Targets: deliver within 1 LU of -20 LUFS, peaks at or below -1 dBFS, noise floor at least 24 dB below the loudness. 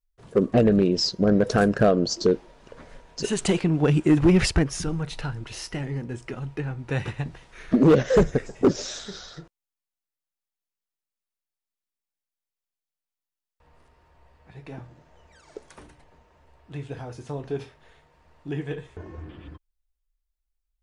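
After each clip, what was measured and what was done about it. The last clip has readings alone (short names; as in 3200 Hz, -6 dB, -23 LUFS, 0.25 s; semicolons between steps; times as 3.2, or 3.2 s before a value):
clipped 0.4%; flat tops at -11.0 dBFS; loudness -23.5 LUFS; peak -11.0 dBFS; loudness target -20.0 LUFS
-> clip repair -11 dBFS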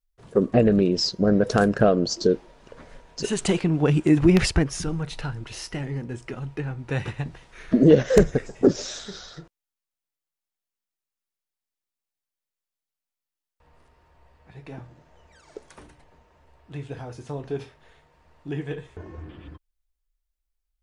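clipped 0.0%; loudness -22.5 LUFS; peak -2.0 dBFS; loudness target -20.0 LUFS
-> gain +2.5 dB; limiter -1 dBFS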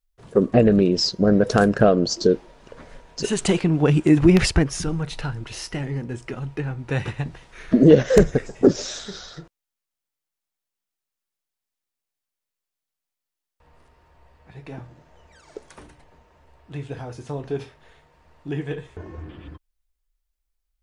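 loudness -20.0 LUFS; peak -1.0 dBFS; noise floor -86 dBFS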